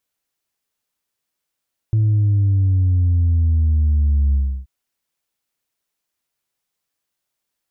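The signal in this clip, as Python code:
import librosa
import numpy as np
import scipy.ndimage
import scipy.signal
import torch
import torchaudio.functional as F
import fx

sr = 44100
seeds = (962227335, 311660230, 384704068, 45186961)

y = fx.sub_drop(sr, level_db=-13, start_hz=110.0, length_s=2.73, drive_db=1.0, fade_s=0.32, end_hz=65.0)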